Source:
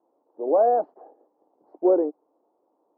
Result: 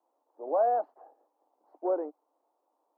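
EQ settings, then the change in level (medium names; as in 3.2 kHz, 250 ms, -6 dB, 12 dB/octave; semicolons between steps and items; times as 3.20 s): high-pass 300 Hz 24 dB/octave; peaking EQ 390 Hz -13.5 dB 1.3 oct; 0.0 dB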